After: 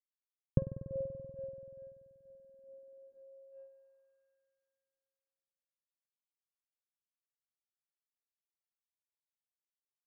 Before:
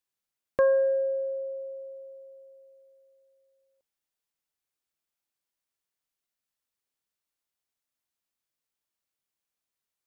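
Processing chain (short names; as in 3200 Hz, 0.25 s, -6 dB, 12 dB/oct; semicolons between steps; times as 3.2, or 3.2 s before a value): G.711 law mismatch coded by A; compressor 2.5:1, threshold -31 dBFS, peak gain reduction 8 dB; grains 0.236 s, grains 2.3/s, spray 24 ms, pitch spread up and down by 0 st; spring tank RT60 2.6 s, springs 48 ms, DRR 8.5 dB; low-pass sweep 140 Hz -> 1400 Hz, 2.16–4.26; gain +16.5 dB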